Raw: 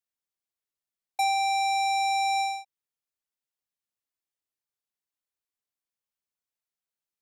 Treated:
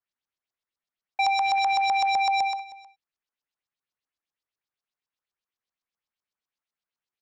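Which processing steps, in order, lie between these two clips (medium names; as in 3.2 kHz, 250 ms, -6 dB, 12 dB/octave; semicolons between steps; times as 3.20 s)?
1.38–2.20 s: crackle 230 per s -33 dBFS; LFO low-pass saw up 7.9 Hz 990–6000 Hz; delay 315 ms -19.5 dB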